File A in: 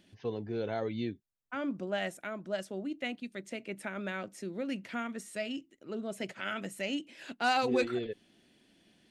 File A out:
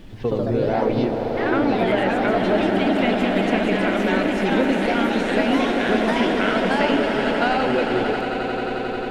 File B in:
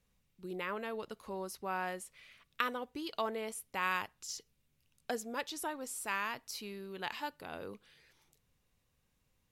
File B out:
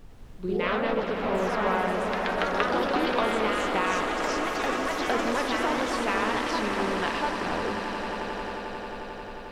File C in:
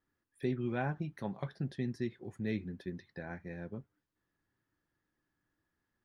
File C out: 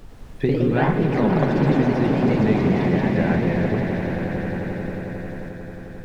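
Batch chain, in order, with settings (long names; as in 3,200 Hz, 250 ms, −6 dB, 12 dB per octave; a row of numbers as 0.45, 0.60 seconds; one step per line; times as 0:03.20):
low-pass filter 4,700 Hz 12 dB per octave
high-shelf EQ 2,200 Hz −7.5 dB
hum removal 49.85 Hz, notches 38
downward compressor, threshold −38 dBFS
on a send: echo that builds up and dies away 89 ms, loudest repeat 8, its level −11.5 dB
on the sum: background noise brown −60 dBFS
delay with pitch and tempo change per echo 98 ms, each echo +2 semitones, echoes 3
normalise the peak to −6 dBFS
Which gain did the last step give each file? +18.0, +13.5, +20.0 decibels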